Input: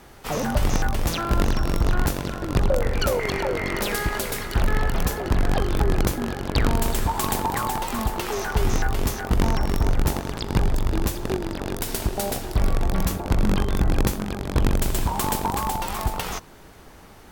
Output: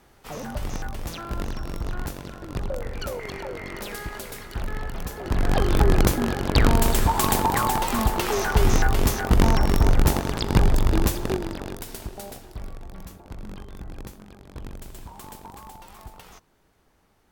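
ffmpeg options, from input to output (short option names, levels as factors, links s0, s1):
-af "volume=1.41,afade=t=in:st=5.13:d=0.6:silence=0.251189,afade=t=out:st=10.99:d=0.86:silence=0.251189,afade=t=out:st=11.85:d=0.95:silence=0.375837"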